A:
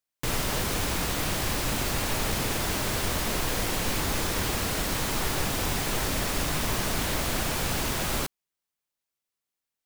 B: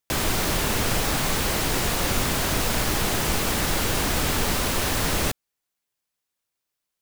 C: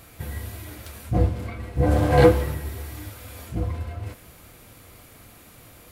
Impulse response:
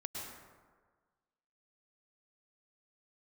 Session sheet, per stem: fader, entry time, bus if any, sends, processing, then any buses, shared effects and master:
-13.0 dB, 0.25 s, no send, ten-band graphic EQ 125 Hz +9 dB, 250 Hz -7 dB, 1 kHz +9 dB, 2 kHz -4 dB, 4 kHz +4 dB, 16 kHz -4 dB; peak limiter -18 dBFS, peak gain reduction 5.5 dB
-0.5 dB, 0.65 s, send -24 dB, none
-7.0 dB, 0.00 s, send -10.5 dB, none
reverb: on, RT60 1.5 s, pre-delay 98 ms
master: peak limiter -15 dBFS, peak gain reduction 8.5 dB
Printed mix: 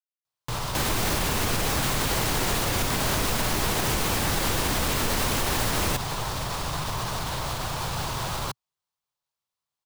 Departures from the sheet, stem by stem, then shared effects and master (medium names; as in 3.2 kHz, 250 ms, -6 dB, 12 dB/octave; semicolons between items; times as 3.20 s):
stem A -13.0 dB -> -2.0 dB; stem C: muted